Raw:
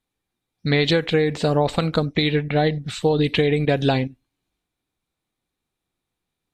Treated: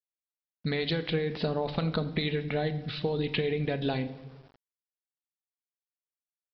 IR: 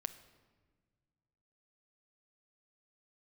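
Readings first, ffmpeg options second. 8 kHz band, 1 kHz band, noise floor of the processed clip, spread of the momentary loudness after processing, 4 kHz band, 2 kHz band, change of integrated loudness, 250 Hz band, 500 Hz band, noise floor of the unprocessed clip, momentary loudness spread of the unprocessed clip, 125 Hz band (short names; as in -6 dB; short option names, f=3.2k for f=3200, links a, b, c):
under -30 dB, -11.5 dB, under -85 dBFS, 5 LU, -9.5 dB, -10.0 dB, -10.0 dB, -10.0 dB, -10.5 dB, -83 dBFS, 4 LU, -9.5 dB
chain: -filter_complex "[0:a]acompressor=threshold=-21dB:ratio=6[a];[1:a]atrim=start_sample=2205,asetrate=61740,aresample=44100[b];[a][b]afir=irnorm=-1:irlink=0,aresample=11025,aeval=exprs='val(0)*gte(abs(val(0)),0.00266)':c=same,aresample=44100"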